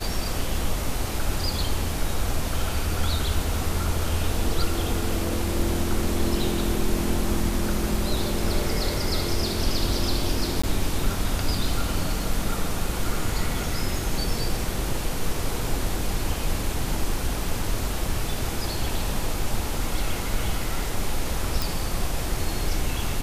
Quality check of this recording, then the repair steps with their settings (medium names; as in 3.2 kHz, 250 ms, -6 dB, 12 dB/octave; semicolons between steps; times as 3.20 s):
10.62–10.63 s: dropout 15 ms
21.62 s: pop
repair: de-click; interpolate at 10.62 s, 15 ms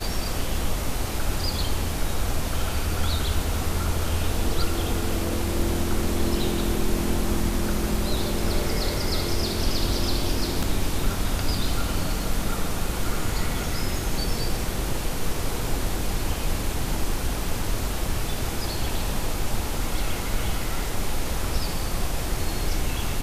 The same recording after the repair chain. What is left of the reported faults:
nothing left